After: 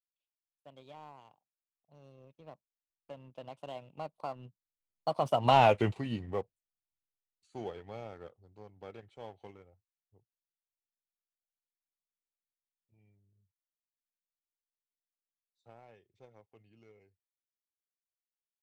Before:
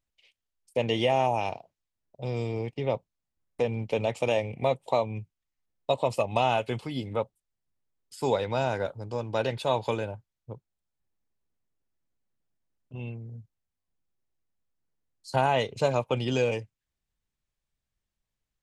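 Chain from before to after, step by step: Doppler pass-by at 5.64 s, 48 m/s, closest 8.9 m; treble shelf 3.1 kHz -8 dB; waveshaping leveller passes 1; trim +1.5 dB

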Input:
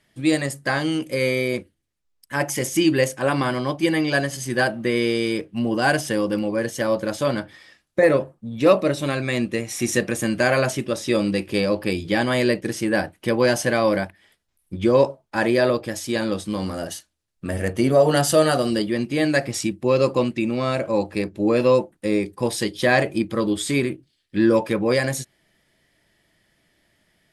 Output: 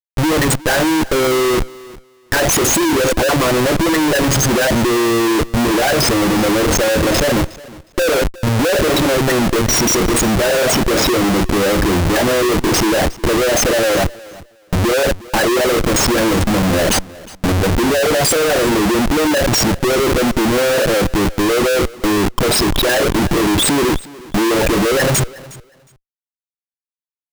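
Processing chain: resonances exaggerated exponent 3; waveshaping leveller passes 3; Schmitt trigger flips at -23.5 dBFS; on a send: feedback delay 362 ms, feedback 18%, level -20.5 dB

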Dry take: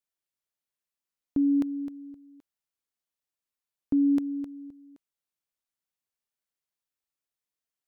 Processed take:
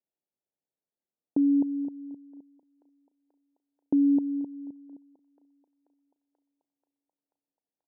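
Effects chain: steep low-pass 950 Hz 96 dB/octave; level-controlled noise filter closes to 630 Hz, open at -24.5 dBFS; high-pass 170 Hz; in parallel at +1 dB: compression, threshold -40 dBFS, peak gain reduction 17 dB; on the sum: thinning echo 485 ms, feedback 83%, high-pass 530 Hz, level -19 dB

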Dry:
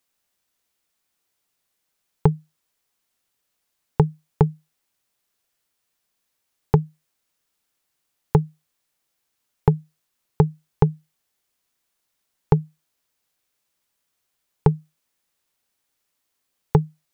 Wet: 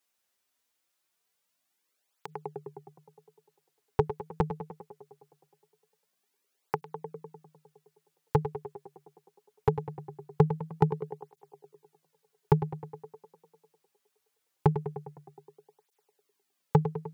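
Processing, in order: bass shelf 180 Hz -10 dB; tape echo 102 ms, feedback 78%, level -8.5 dB, low-pass 2 kHz; cancelling through-zero flanger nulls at 0.22 Hz, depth 7.7 ms

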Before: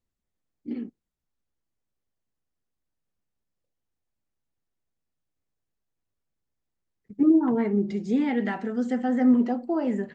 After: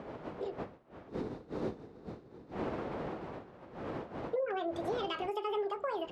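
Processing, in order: wind noise 220 Hz -30 dBFS; high-pass 69 Hz 6 dB/octave; tone controls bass -9 dB, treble -11 dB; compression 4:1, threshold -33 dBFS, peak gain reduction 14 dB; time-frequency box 1.82–4.19 s, 320–2100 Hz -8 dB; wide varispeed 1.66×

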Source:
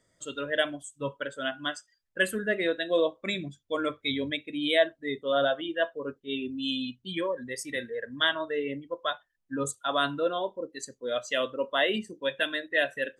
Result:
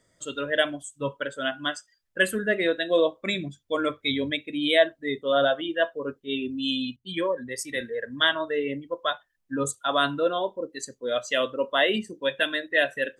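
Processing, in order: 6.96–7.81 s: three bands expanded up and down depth 40%; trim +3.5 dB

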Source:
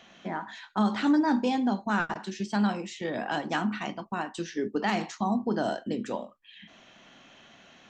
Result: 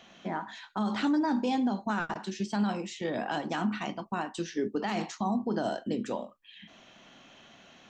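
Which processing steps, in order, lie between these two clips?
peaking EQ 1.8 kHz -2.5 dB; peak limiter -20.5 dBFS, peak gain reduction 6.5 dB

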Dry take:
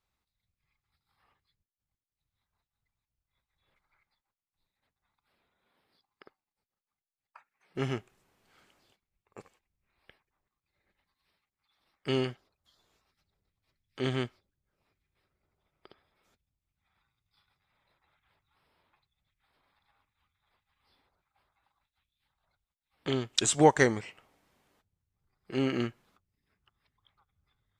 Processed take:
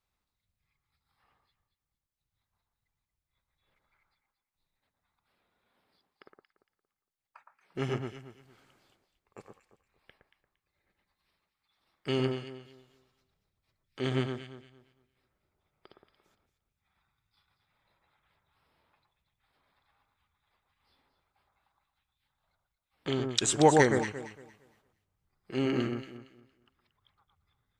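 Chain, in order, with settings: echo whose repeats swap between lows and highs 115 ms, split 1.6 kHz, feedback 50%, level -3.5 dB; trim -1 dB

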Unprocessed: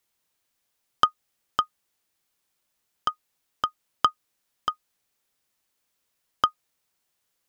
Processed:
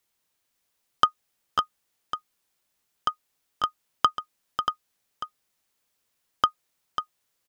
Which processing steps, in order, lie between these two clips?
delay 544 ms -8 dB

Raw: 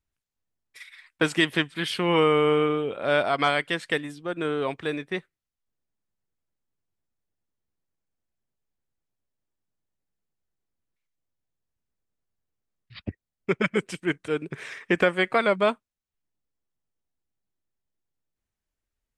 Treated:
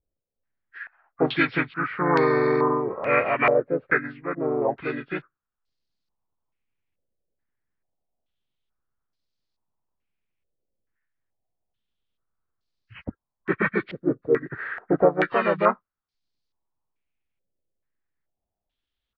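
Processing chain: knee-point frequency compression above 1.2 kHz 1.5:1; harmony voices -3 st -2 dB; step-sequenced low-pass 2.3 Hz 530–4500 Hz; trim -2.5 dB

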